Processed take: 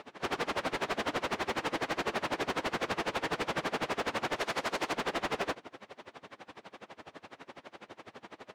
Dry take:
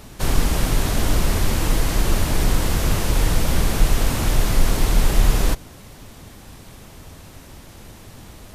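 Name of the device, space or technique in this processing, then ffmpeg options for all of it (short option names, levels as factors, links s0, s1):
helicopter radio: -filter_complex "[0:a]asettb=1/sr,asplit=3[s0][s1][s2];[s0]atrim=end=4.364[s3];[s1]atrim=start=4.36:end=4.93,asetpts=PTS-STARTPTS,afade=t=in:d=0.004:c=qsin,afade=t=out:st=0.566:d=0.004:c=qsin,bass=f=250:g=-5,treble=f=4000:g=5[s4];[s2]atrim=start=4.926[s5];[s3][s4]acrossfade=d=0.004:c1=hsin:c2=qsin[s6];[s6][s5]acrossfade=d=0.004:c1=qsin:c2=hsin,highpass=390,lowpass=2600,aeval=exprs='val(0)*pow(10,-26*(0.5-0.5*cos(2*PI*12*n/s))/20)':c=same,asoftclip=type=hard:threshold=0.0237,volume=1.78"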